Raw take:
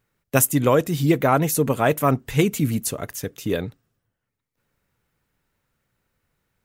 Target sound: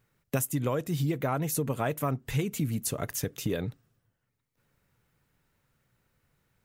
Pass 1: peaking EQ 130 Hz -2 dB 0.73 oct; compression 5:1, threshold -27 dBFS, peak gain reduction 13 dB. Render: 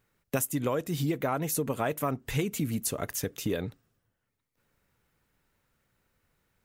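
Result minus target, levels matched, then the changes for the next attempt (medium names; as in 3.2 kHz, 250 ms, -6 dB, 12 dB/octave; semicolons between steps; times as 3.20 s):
125 Hz band -3.0 dB
change: peaking EQ 130 Hz +4.5 dB 0.73 oct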